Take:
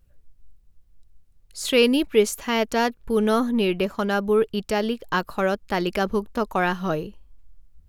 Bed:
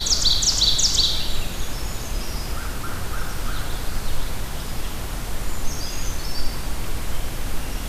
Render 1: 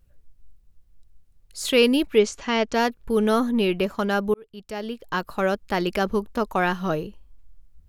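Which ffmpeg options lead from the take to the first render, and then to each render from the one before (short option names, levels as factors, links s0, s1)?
-filter_complex "[0:a]asettb=1/sr,asplit=3[s0][s1][s2];[s0]atrim=end=2.184[s3];[s1]atrim=start=2.18:end=2.74,asetpts=PTS-STARTPTS,afade=t=in:d=0.004:c=qsin,afade=t=out:st=0.556:d=0.004:c=qsin,lowpass=f=6700:w=0.5412,lowpass=f=6700:w=1.3066[s4];[s2]atrim=start=2.736[s5];[s3][s4]acrossfade=d=0.004:c1=hsin:c2=qsin[s6];[s6][s5]acrossfade=d=0.004:c1=qsin:c2=hsin,asplit=2[s7][s8];[s7]atrim=end=4.34,asetpts=PTS-STARTPTS,afade=t=out:st=4.336:d=0.004:c=hsin[s9];[s8]atrim=start=4.34,asetpts=PTS-STARTPTS,afade=t=in:d=1.14[s10];[s9][s10]concat=n=2:v=0:a=1"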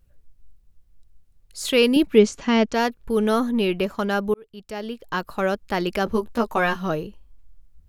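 -filter_complex "[0:a]asettb=1/sr,asplit=3[s0][s1][s2];[s0]atrim=end=1.964[s3];[s1]atrim=start=1.96:end=2.66,asetpts=PTS-STARTPTS,afade=t=in:d=0.004:c=qsin,afade=t=out:st=0.696:d=0.004:c=qsin,equalizer=f=190:t=o:w=1.6:g=9[s4];[s2]atrim=start=2.656[s5];[s3][s4]acrossfade=d=0.004:c1=hsin:c2=qsin[s6];[s6][s5]acrossfade=d=0.004:c1=qsin:c2=hsin,asettb=1/sr,asplit=3[s7][s8][s9];[s7]atrim=end=6.054[s10];[s8]atrim=start=6.05:end=6.76,asetpts=PTS-STARTPTS,afade=t=in:d=0.004:c=qsin,afade=t=out:st=0.706:d=0.004:c=qsin,asplit=2[s11][s12];[s12]adelay=13,volume=0.708[s13];[s11][s13]amix=inputs=2:normalize=0,atrim=end_sample=31311[s14];[s9]atrim=start=6.756[s15];[s10][s14]acrossfade=d=0.004:c1=hsin:c2=qsin[s16];[s16][s15]acrossfade=d=0.004:c1=qsin:c2=hsin"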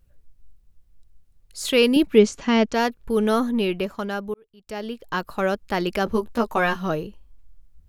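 -filter_complex "[0:a]asplit=2[s0][s1];[s0]atrim=end=4.67,asetpts=PTS-STARTPTS,afade=t=out:st=3.45:d=1.22:silence=0.211349[s2];[s1]atrim=start=4.67,asetpts=PTS-STARTPTS,afade=t=in:d=0.004:c=hsin:silence=0.211349[s3];[s2][s3]concat=n=2:v=0:a=1"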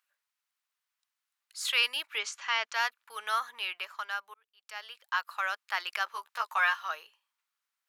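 -af "highpass=f=1100:w=0.5412,highpass=f=1100:w=1.3066,highshelf=f=4000:g=-7"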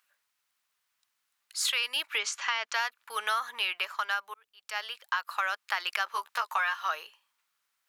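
-filter_complex "[0:a]asplit=2[s0][s1];[s1]alimiter=limit=0.0708:level=0:latency=1:release=184,volume=1.41[s2];[s0][s2]amix=inputs=2:normalize=0,acompressor=threshold=0.0562:ratio=10"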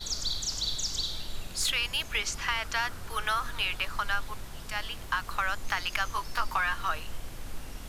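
-filter_complex "[1:a]volume=0.211[s0];[0:a][s0]amix=inputs=2:normalize=0"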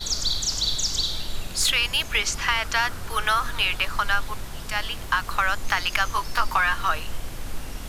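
-af "volume=2.24"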